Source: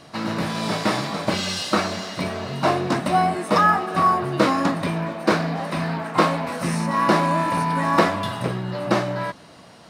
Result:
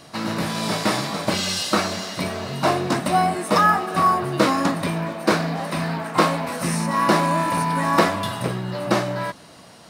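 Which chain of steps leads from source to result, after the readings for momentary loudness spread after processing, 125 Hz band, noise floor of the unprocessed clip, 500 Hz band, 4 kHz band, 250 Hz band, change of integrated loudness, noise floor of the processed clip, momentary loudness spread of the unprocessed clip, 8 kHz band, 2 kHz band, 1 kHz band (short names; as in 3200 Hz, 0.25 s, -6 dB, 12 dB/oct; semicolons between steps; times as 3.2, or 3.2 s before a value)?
8 LU, 0.0 dB, -46 dBFS, 0.0 dB, +2.0 dB, 0.0 dB, +0.5 dB, -46 dBFS, 9 LU, +5.0 dB, +0.5 dB, 0.0 dB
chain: high shelf 7000 Hz +9.5 dB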